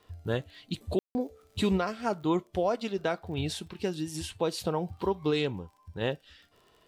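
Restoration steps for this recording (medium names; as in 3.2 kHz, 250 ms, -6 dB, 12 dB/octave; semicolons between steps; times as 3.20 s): de-click; room tone fill 0.99–1.15 s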